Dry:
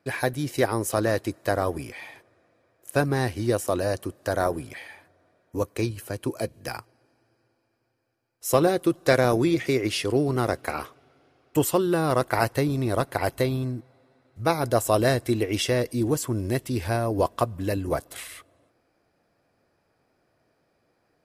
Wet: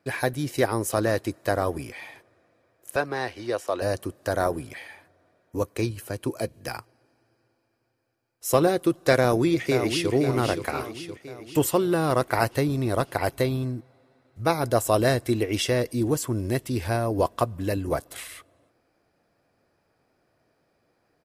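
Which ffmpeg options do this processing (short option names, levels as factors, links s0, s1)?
-filter_complex "[0:a]asettb=1/sr,asplit=3[s0][s1][s2];[s0]atrim=end=2.964[s3];[s1]atrim=start=2.96:end=3.82,asetpts=PTS-STARTPTS,afade=t=in:d=0.004:c=qsin,afade=t=out:st=0.856:d=0.004:c=qsin,acrossover=split=390 5500:gain=0.178 1 0.2[s4][s5][s6];[s4][s5][s6]amix=inputs=3:normalize=0[s7];[s2]atrim=start=3.816[s8];[s3][s7]acrossfade=d=0.004:c1=hsin:c2=qsin[s9];[s9][s8]acrossfade=d=0.004:c1=qsin:c2=hsin,asplit=2[s10][s11];[s11]afade=t=in:st=9.19:d=0.01,afade=t=out:st=10.12:d=0.01,aecho=0:1:520|1040|1560|2080|2600|3120|3640:0.421697|0.231933|0.127563|0.0701598|0.0385879|0.0212233|0.0116728[s12];[s10][s12]amix=inputs=2:normalize=0"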